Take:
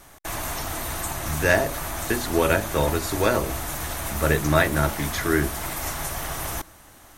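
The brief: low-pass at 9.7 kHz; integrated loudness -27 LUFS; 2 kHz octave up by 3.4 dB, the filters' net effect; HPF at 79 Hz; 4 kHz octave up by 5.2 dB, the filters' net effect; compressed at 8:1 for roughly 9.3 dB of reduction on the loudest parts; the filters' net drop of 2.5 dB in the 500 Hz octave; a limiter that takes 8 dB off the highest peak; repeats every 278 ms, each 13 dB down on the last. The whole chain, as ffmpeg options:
-af "highpass=79,lowpass=9700,equalizer=f=500:t=o:g=-3.5,equalizer=f=2000:t=o:g=3.5,equalizer=f=4000:t=o:g=5.5,acompressor=threshold=0.0794:ratio=8,alimiter=limit=0.112:level=0:latency=1,aecho=1:1:278|556|834:0.224|0.0493|0.0108,volume=1.26"

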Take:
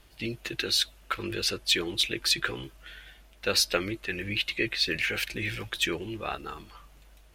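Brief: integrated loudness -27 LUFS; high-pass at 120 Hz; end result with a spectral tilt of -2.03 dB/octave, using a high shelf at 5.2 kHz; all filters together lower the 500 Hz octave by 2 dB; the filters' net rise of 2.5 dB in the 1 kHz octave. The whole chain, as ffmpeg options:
-af "highpass=120,equalizer=f=500:t=o:g=-3.5,equalizer=f=1000:t=o:g=5,highshelf=f=5200:g=-4.5,volume=1.33"

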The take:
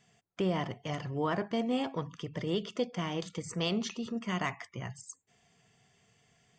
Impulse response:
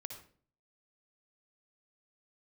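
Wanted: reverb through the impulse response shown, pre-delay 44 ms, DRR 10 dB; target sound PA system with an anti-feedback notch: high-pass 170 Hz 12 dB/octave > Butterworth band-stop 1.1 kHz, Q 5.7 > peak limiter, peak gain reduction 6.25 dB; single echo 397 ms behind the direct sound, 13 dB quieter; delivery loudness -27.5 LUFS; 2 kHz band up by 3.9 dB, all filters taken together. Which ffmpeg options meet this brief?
-filter_complex "[0:a]equalizer=f=2000:t=o:g=4.5,aecho=1:1:397:0.224,asplit=2[s0][s1];[1:a]atrim=start_sample=2205,adelay=44[s2];[s1][s2]afir=irnorm=-1:irlink=0,volume=0.473[s3];[s0][s3]amix=inputs=2:normalize=0,highpass=170,asuperstop=centerf=1100:order=8:qfactor=5.7,volume=2.66,alimiter=limit=0.168:level=0:latency=1"

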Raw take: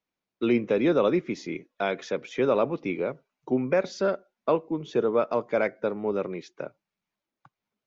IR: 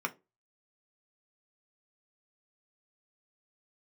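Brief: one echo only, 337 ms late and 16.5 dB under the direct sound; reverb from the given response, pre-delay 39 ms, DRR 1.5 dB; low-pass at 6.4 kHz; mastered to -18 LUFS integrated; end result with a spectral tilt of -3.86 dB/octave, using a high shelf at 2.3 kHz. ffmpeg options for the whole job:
-filter_complex "[0:a]lowpass=6400,highshelf=f=2300:g=-9,aecho=1:1:337:0.15,asplit=2[s0][s1];[1:a]atrim=start_sample=2205,adelay=39[s2];[s1][s2]afir=irnorm=-1:irlink=0,volume=0.422[s3];[s0][s3]amix=inputs=2:normalize=0,volume=2.51"

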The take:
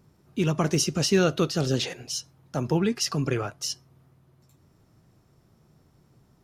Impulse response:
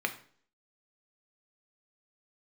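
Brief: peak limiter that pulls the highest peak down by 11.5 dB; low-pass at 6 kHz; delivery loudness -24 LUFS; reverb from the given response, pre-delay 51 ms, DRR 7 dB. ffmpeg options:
-filter_complex "[0:a]lowpass=6000,alimiter=limit=0.0891:level=0:latency=1,asplit=2[s0][s1];[1:a]atrim=start_sample=2205,adelay=51[s2];[s1][s2]afir=irnorm=-1:irlink=0,volume=0.2[s3];[s0][s3]amix=inputs=2:normalize=0,volume=2.37"

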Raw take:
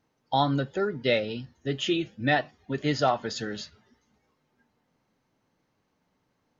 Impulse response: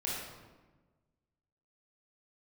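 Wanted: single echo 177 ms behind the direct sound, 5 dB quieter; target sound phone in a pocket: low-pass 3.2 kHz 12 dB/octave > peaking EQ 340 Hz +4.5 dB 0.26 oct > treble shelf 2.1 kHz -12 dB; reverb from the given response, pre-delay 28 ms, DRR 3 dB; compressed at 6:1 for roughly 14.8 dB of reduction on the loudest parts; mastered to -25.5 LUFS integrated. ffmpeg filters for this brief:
-filter_complex "[0:a]acompressor=threshold=0.0178:ratio=6,aecho=1:1:177:0.562,asplit=2[s0][s1];[1:a]atrim=start_sample=2205,adelay=28[s2];[s1][s2]afir=irnorm=-1:irlink=0,volume=0.447[s3];[s0][s3]amix=inputs=2:normalize=0,lowpass=3200,equalizer=f=340:t=o:w=0.26:g=4.5,highshelf=f=2100:g=-12,volume=3.76"

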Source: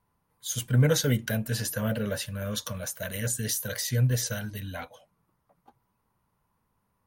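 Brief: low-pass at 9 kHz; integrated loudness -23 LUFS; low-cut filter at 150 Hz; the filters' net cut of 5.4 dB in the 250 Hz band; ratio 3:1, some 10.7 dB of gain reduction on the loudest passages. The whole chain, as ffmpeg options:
-af "highpass=150,lowpass=9000,equalizer=f=250:t=o:g=-5.5,acompressor=threshold=0.0158:ratio=3,volume=5.62"

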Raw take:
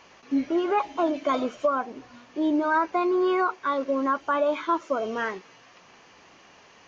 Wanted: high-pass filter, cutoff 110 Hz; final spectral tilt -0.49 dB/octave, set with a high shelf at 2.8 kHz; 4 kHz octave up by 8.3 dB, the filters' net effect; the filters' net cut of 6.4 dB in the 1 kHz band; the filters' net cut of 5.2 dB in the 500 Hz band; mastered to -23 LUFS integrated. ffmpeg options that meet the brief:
-af "highpass=110,equalizer=f=500:t=o:g=-5.5,equalizer=f=1000:t=o:g=-8,highshelf=f=2800:g=9,equalizer=f=4000:t=o:g=4.5,volume=2.11"

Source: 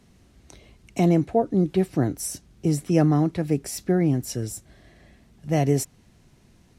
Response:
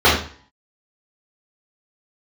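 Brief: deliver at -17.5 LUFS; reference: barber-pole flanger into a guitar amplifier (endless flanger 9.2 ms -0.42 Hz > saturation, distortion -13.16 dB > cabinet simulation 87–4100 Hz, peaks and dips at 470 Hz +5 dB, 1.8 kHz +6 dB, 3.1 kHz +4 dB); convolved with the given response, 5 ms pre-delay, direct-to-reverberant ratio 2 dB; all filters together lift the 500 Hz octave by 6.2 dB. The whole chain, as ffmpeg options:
-filter_complex "[0:a]equalizer=f=500:t=o:g=4.5,asplit=2[s0][s1];[1:a]atrim=start_sample=2205,adelay=5[s2];[s1][s2]afir=irnorm=-1:irlink=0,volume=0.0376[s3];[s0][s3]amix=inputs=2:normalize=0,asplit=2[s4][s5];[s5]adelay=9.2,afreqshift=-0.42[s6];[s4][s6]amix=inputs=2:normalize=1,asoftclip=threshold=0.188,highpass=87,equalizer=f=470:t=q:w=4:g=5,equalizer=f=1800:t=q:w=4:g=6,equalizer=f=3100:t=q:w=4:g=4,lowpass=f=4100:w=0.5412,lowpass=f=4100:w=1.3066,volume=1.88"

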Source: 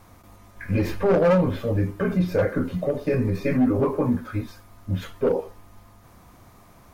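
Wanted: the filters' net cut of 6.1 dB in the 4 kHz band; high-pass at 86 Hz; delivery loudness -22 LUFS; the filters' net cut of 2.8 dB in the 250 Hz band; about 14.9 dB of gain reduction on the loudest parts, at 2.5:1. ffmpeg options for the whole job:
-af "highpass=86,equalizer=f=250:t=o:g=-3.5,equalizer=f=4000:t=o:g=-8,acompressor=threshold=0.01:ratio=2.5,volume=6.31"

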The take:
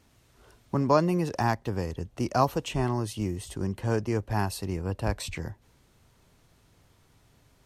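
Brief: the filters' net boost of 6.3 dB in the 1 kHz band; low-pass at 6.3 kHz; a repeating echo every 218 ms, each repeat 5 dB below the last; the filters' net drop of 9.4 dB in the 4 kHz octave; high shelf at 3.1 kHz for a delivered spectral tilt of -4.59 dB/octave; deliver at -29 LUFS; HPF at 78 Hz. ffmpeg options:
-af "highpass=78,lowpass=6300,equalizer=f=1000:t=o:g=8.5,highshelf=f=3100:g=-6,equalizer=f=4000:t=o:g=-7.5,aecho=1:1:218|436|654|872|1090|1308|1526:0.562|0.315|0.176|0.0988|0.0553|0.031|0.0173,volume=0.631"

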